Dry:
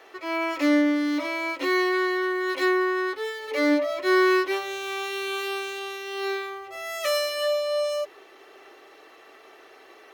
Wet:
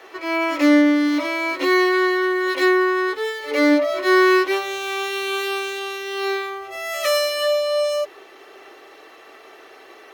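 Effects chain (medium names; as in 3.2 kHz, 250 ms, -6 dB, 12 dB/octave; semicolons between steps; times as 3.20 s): reverse echo 109 ms -17.5 dB; trim +5.5 dB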